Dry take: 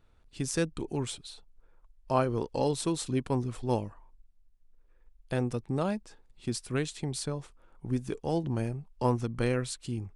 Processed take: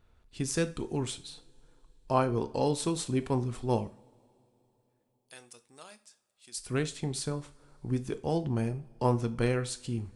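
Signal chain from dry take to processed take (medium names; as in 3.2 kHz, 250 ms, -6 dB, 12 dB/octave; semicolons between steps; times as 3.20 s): 3.87–6.58 s: differentiator; reverberation, pre-delay 3 ms, DRR 10 dB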